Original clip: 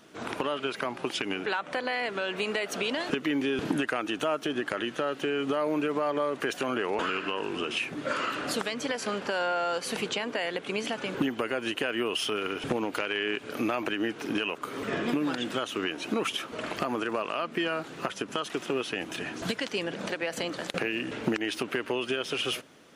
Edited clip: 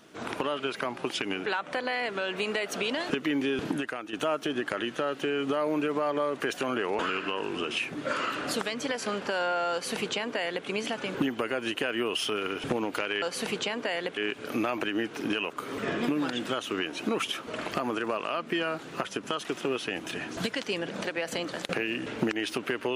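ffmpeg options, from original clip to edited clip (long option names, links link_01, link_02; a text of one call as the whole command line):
ffmpeg -i in.wav -filter_complex "[0:a]asplit=4[link_01][link_02][link_03][link_04];[link_01]atrim=end=4.13,asetpts=PTS-STARTPTS,afade=type=out:start_time=3.52:duration=0.61:silence=0.316228[link_05];[link_02]atrim=start=4.13:end=13.222,asetpts=PTS-STARTPTS,afade=type=in:duration=0.004:curve=hsin:silence=0.316228[link_06];[link_03]atrim=start=9.718:end=10.672[link_07];[link_04]atrim=start=13.218[link_08];[link_05][link_06]concat=n=2:v=0:a=1[link_09];[link_09][link_07]acrossfade=duration=0.004:curve1=hsin:curve2=hsin[link_10];[link_10][link_08]acrossfade=duration=0.004:curve1=hsin:curve2=hsin" out.wav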